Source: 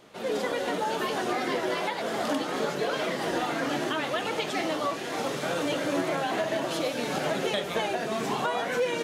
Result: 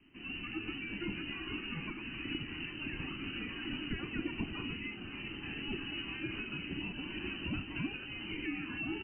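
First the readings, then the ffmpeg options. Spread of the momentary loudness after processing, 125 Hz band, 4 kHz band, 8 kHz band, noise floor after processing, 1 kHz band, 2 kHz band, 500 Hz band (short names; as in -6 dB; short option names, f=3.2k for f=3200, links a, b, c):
3 LU, -3.5 dB, -7.5 dB, under -40 dB, -46 dBFS, -22.5 dB, -7.5 dB, -21.5 dB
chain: -af "lowpass=f=2.7k:t=q:w=0.5098,lowpass=f=2.7k:t=q:w=0.6013,lowpass=f=2.7k:t=q:w=0.9,lowpass=f=2.7k:t=q:w=2.563,afreqshift=-3200,firequalizer=gain_entry='entry(140,0);entry(310,6);entry(500,-25)':delay=0.05:min_phase=1,volume=10dB"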